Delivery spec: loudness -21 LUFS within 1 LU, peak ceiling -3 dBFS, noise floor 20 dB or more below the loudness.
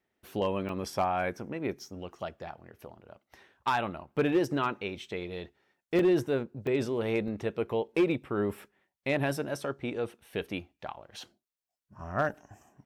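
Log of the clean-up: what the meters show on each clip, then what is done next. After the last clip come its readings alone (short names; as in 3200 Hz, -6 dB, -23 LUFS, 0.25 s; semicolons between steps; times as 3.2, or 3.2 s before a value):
clipped 0.3%; flat tops at -19.0 dBFS; dropouts 4; longest dropout 2.3 ms; loudness -31.5 LUFS; peak -19.0 dBFS; loudness target -21.0 LUFS
-> clip repair -19 dBFS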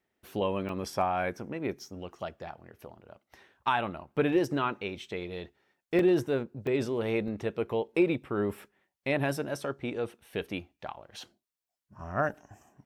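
clipped 0.0%; dropouts 4; longest dropout 2.3 ms
-> interpolate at 0.69/5.99/6.67/7.28, 2.3 ms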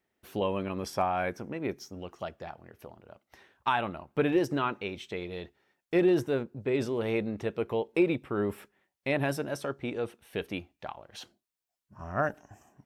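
dropouts 0; loudness -31.5 LUFS; peak -14.0 dBFS; loudness target -21.0 LUFS
-> gain +10.5 dB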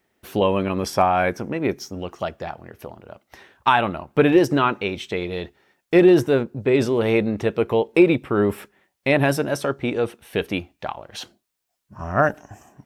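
loudness -21.0 LUFS; peak -3.5 dBFS; noise floor -76 dBFS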